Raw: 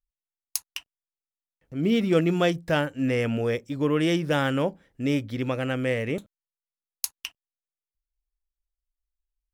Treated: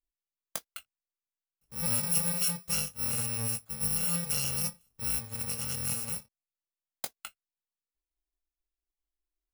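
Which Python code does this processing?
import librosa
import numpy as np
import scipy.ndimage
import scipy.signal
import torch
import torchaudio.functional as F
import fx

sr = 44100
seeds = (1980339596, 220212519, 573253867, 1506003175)

y = fx.bit_reversed(x, sr, seeds[0], block=128)
y = fx.chorus_voices(y, sr, voices=2, hz=0.59, base_ms=20, depth_ms=2.7, mix_pct=25)
y = y * 10.0 ** (-5.0 / 20.0)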